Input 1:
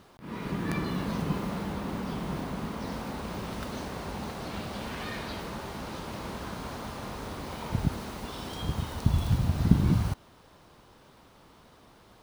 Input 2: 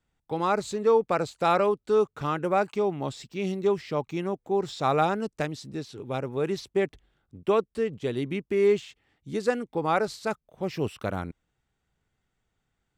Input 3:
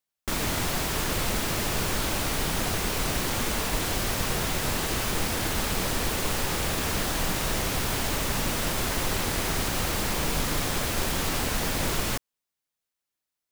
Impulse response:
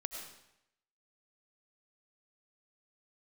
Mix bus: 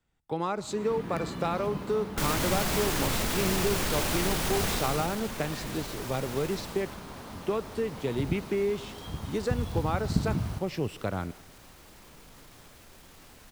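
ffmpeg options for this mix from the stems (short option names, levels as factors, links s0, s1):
-filter_complex "[0:a]adelay=450,volume=0.398,asplit=2[s0][s1];[s1]volume=0.422[s2];[1:a]acrossover=split=160[s3][s4];[s4]acompressor=threshold=0.0447:ratio=6[s5];[s3][s5]amix=inputs=2:normalize=0,volume=0.891,asplit=2[s6][s7];[s7]volume=0.211[s8];[2:a]alimiter=limit=0.112:level=0:latency=1:release=12,adelay=1900,volume=0.944,afade=t=out:st=4.71:d=0.48:silence=0.281838,afade=t=out:st=6.43:d=0.58:silence=0.237137[s9];[3:a]atrim=start_sample=2205[s10];[s2][s8]amix=inputs=2:normalize=0[s11];[s11][s10]afir=irnorm=-1:irlink=0[s12];[s0][s6][s9][s12]amix=inputs=4:normalize=0"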